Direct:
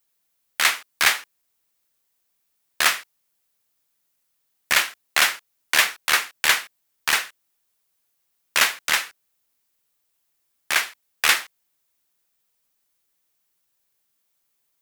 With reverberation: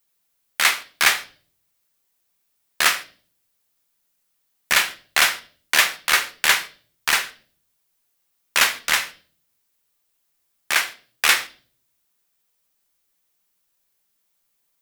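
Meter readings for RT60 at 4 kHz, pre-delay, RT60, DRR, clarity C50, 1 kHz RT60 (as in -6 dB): 0.40 s, 4 ms, 0.45 s, 9.0 dB, 17.5 dB, 0.40 s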